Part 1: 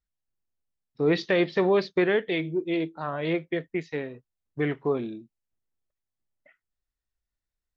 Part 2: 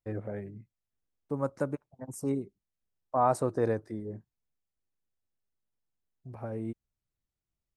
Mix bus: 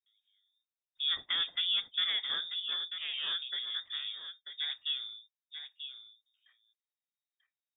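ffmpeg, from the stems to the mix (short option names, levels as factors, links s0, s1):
-filter_complex "[0:a]volume=0.316,asplit=3[s0][s1][s2];[s1]volume=0.355[s3];[1:a]acompressor=threshold=0.0126:ratio=6,alimiter=level_in=2.99:limit=0.0631:level=0:latency=1,volume=0.335,highpass=160,volume=1.26[s4];[s2]apad=whole_len=342413[s5];[s4][s5]sidechaingate=range=0.0224:threshold=0.00158:ratio=16:detection=peak[s6];[s3]aecho=0:1:940:1[s7];[s0][s6][s7]amix=inputs=3:normalize=0,highpass=63,lowpass=f=3200:t=q:w=0.5098,lowpass=f=3200:t=q:w=0.6013,lowpass=f=3200:t=q:w=0.9,lowpass=f=3200:t=q:w=2.563,afreqshift=-3800"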